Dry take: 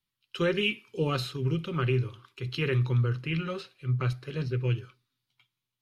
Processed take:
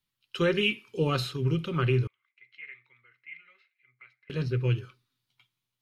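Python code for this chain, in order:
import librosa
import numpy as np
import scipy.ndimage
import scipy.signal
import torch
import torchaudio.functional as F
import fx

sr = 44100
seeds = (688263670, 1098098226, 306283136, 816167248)

y = fx.bandpass_q(x, sr, hz=2100.0, q=20.0, at=(2.07, 4.3))
y = y * 10.0 ** (1.5 / 20.0)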